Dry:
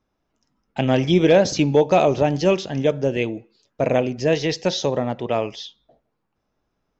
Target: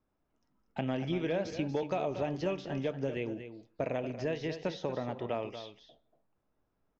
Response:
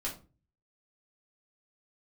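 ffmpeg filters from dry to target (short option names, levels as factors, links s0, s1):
-filter_complex "[0:a]aemphasis=mode=reproduction:type=75fm,acrossover=split=1100|2500[s0][s1][s2];[s0]acompressor=threshold=0.0501:ratio=4[s3];[s1]acompressor=threshold=0.0112:ratio=4[s4];[s2]acompressor=threshold=0.00631:ratio=4[s5];[s3][s4][s5]amix=inputs=3:normalize=0,aecho=1:1:236:0.299,asplit=2[s6][s7];[1:a]atrim=start_sample=2205[s8];[s7][s8]afir=irnorm=-1:irlink=0,volume=0.133[s9];[s6][s9]amix=inputs=2:normalize=0,volume=0.422"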